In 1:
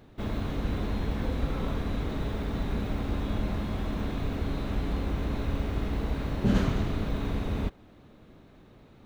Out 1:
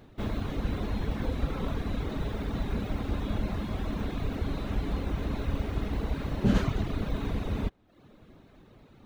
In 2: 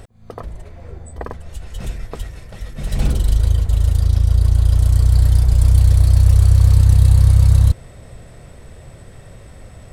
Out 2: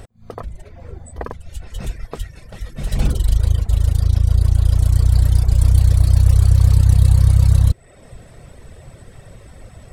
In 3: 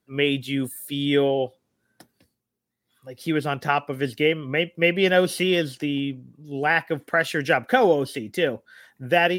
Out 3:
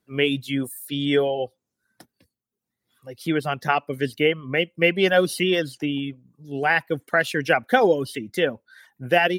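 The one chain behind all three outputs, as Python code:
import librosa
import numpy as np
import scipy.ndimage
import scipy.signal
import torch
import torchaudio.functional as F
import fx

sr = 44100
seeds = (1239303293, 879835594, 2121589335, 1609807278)

y = fx.dereverb_blind(x, sr, rt60_s=0.69)
y = y * 10.0 ** (1.0 / 20.0)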